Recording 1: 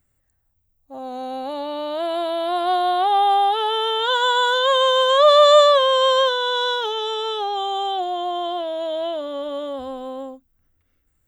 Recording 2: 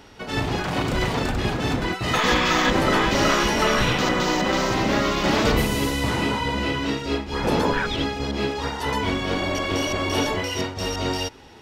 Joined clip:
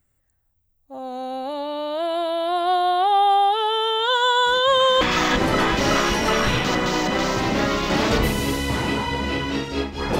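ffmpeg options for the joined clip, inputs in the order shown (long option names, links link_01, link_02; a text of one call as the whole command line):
ffmpeg -i cue0.wav -i cue1.wav -filter_complex "[1:a]asplit=2[link_01][link_02];[0:a]apad=whole_dur=10.19,atrim=end=10.19,atrim=end=5.012[link_03];[link_02]atrim=start=2.348:end=7.53[link_04];[link_01]atrim=start=1.8:end=2.35,asetpts=PTS-STARTPTS,volume=-17dB,afade=type=in:duration=0.004:curve=hsin,afade=type=out:start_time=0.546:duration=0.004:curve=hsin,adelay=4460[link_05];[link_03][link_04]acrossfade=duration=0.004:curve1=hsin:curve2=hsin[link_06];[link_06][link_05]amix=inputs=2:normalize=0" out.wav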